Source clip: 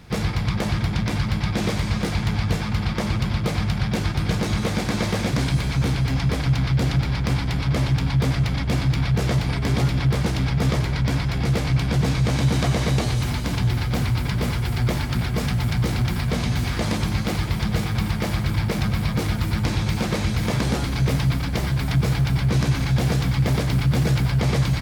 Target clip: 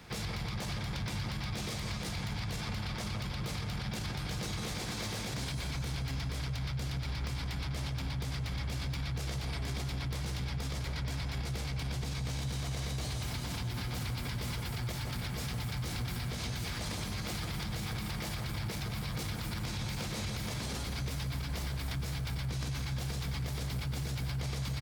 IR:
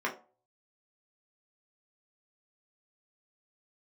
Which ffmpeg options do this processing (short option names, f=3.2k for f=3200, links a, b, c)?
-filter_complex "[0:a]lowshelf=f=290:g=-8,acrossover=split=130|3000[a][b][c];[b]acompressor=threshold=-41dB:ratio=2[d];[a][d][c]amix=inputs=3:normalize=0,acrossover=split=1900[e][f];[e]aecho=1:1:164|328|492|656|820|984|1148:0.501|0.286|0.163|0.0928|0.0529|0.0302|0.0172[g];[f]volume=31.5dB,asoftclip=hard,volume=-31.5dB[h];[g][h]amix=inputs=2:normalize=0,alimiter=level_in=2.5dB:limit=-24dB:level=0:latency=1,volume=-2.5dB,volume=-2dB"